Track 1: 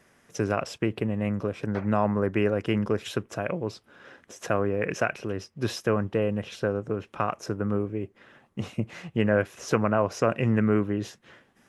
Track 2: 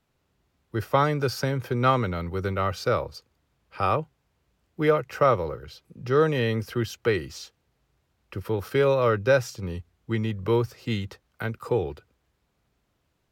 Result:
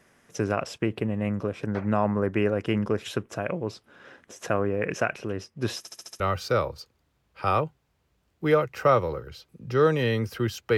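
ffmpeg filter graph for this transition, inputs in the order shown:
-filter_complex "[0:a]apad=whole_dur=10.77,atrim=end=10.77,asplit=6[a][b][c][d][e][f];[a]atrim=end=5.852[g];[b]atrim=start=5.778:end=5.852[h];[c]atrim=start=5.778:end=5.852[i];[d]atrim=start=5.778:end=5.852[j];[e]atrim=start=5.778:end=5.852[k];[f]atrim=start=5.778:end=5.852[l];[1:a]atrim=start=2.558:end=7.13[m];[g][h]acrossfade=d=0.004:c1=hsin:c2=hsin[n];[n][i]acrossfade=d=0.004:c1=hsin:c2=hsin[o];[o][j]acrossfade=d=0.004:c1=hsin:c2=hsin[p];[p][k]acrossfade=d=0.004:c1=hsin:c2=hsin[q];[q][l]acrossfade=d=0.004:c1=hsin:c2=hsin[r];[r][m]acrossfade=d=0.004:c1=hsin:c2=hsin"

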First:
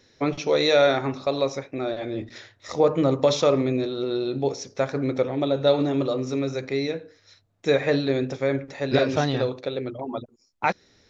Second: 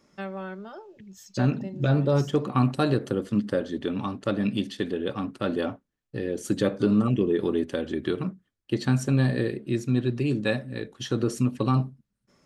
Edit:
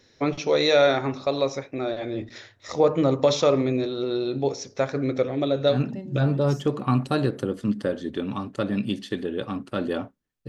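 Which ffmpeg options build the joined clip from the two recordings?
-filter_complex "[0:a]asettb=1/sr,asplit=3[a][b][c];[a]atrim=end=4.924[d];[b]atrim=start=4.92:end=5.81,asetpts=PTS-STARTPTS,afade=t=in:d=0.004:c=qsin,afade=t=out:st=0.886:d=0.004:c=qsin,equalizer=f=890:t=o:w=0.26:g=-9[e];[c]atrim=start=5.806[f];[d][e]acrossfade=d=0.004:c1=hsin:c2=qsin[g];[g][f]acrossfade=d=0.004:c1=qsin:c2=hsin,apad=whole_dur=10.48,atrim=end=10.48,atrim=end=5.81,asetpts=PTS-STARTPTS[h];[1:a]atrim=start=1.35:end=6.16,asetpts=PTS-STARTPTS[i];[h][i]acrossfade=d=0.14:c1=tri:c2=tri"

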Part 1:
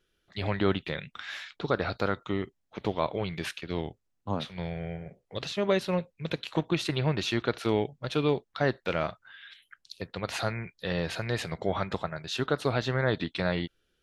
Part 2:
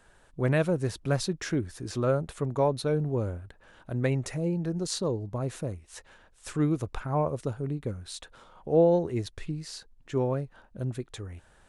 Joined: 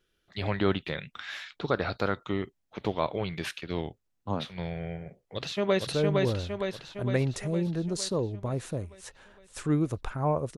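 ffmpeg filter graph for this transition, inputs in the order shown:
-filter_complex "[0:a]apad=whole_dur=10.57,atrim=end=10.57,atrim=end=5.872[a];[1:a]atrim=start=2.768:end=7.47[b];[a][b]acrossfade=d=0.004:c1=hsin:c2=hsin,asplit=2[c][d];[d]afade=t=in:st=5.19:d=0.01,afade=t=out:st=5.87:d=0.01,aecho=0:1:460|920|1380|1840|2300|2760|3220|3680|4140:0.794328|0.476597|0.285958|0.171575|0.102945|0.061767|0.0370602|0.0222361|0.0133417[e];[c][e]amix=inputs=2:normalize=0"

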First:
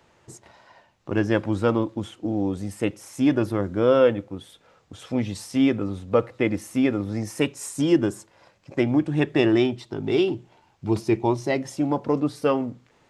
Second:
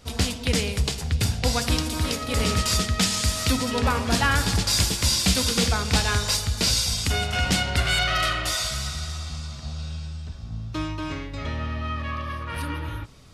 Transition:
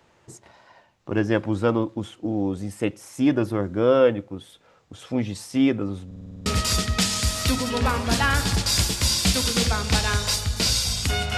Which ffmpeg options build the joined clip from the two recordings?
-filter_complex "[0:a]apad=whole_dur=11.37,atrim=end=11.37,asplit=8[a][b][c][d][e][f][g][h];[a]atrim=end=6.112[i];[b]atrim=start=6.058:end=6.112[j];[c]atrim=start=6.058:end=6.112[k];[d]atrim=start=6.058:end=6.112[l];[e]atrim=start=6.058:end=6.112[m];[f]atrim=start=6.058:end=6.112[n];[g]atrim=start=6.058:end=6.112[o];[h]atrim=start=6.058:end=6.112[p];[1:a]atrim=start=2.468:end=7.38[q];[i][j]acrossfade=d=0.004:c1=hsin:c2=hsin[r];[r][k]acrossfade=d=0.004:c1=hsin:c2=hsin[s];[s][l]acrossfade=d=0.004:c1=hsin:c2=hsin[t];[t][m]acrossfade=d=0.004:c1=hsin:c2=hsin[u];[u][n]acrossfade=d=0.004:c1=hsin:c2=hsin[v];[v][o]acrossfade=d=0.004:c1=hsin:c2=hsin[w];[w][p]acrossfade=d=0.004:c1=hsin:c2=hsin[x];[x][q]acrossfade=d=0.004:c1=hsin:c2=hsin"

